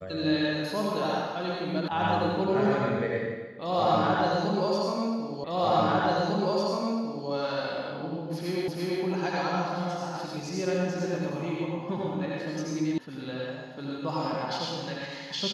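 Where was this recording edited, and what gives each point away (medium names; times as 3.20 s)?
1.88 s: sound stops dead
5.44 s: repeat of the last 1.85 s
8.68 s: repeat of the last 0.34 s
12.98 s: sound stops dead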